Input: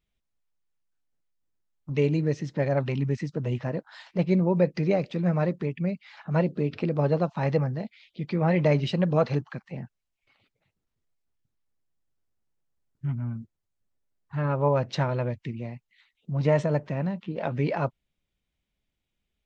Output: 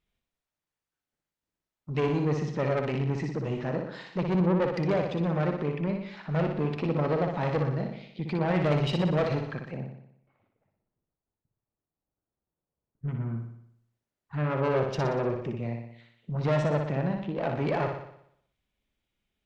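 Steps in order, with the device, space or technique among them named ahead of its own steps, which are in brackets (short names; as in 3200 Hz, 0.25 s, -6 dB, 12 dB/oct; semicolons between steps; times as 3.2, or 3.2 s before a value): 9.74–13.08 LPF 1000 Hz 12 dB/oct; 14.74–15.51 thirty-one-band EQ 400 Hz +11 dB, 2000 Hz -11 dB, 4000 Hz -11 dB; tube preamp driven hard (tube stage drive 24 dB, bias 0.35; low shelf 190 Hz -5 dB; high shelf 4500 Hz -6.5 dB); flutter echo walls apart 10.3 m, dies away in 0.71 s; gain +3 dB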